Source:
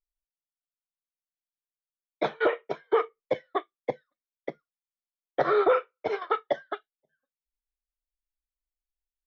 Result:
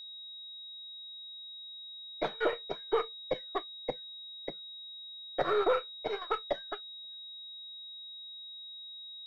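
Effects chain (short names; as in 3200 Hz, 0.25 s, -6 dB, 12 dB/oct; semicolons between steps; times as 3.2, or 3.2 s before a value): half-wave gain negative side -3 dB; whine 3800 Hz -39 dBFS; gain -4.5 dB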